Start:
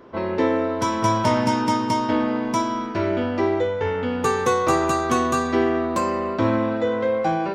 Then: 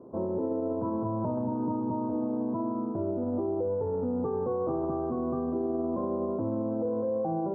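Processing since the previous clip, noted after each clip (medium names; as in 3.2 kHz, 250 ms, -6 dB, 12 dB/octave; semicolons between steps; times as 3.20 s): Bessel low-pass 560 Hz, order 8; peak limiter -23 dBFS, peak gain reduction 11.5 dB; high-pass 93 Hz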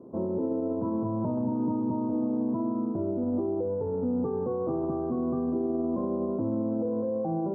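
peaking EQ 210 Hz +7 dB 2.1 oct; trim -3.5 dB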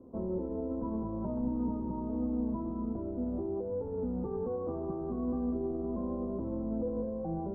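octave divider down 2 oct, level -5 dB; flange 1.3 Hz, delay 3.6 ms, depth 2.1 ms, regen +46%; trim -2.5 dB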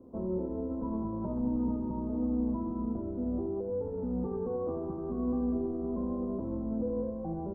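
delay 81 ms -8.5 dB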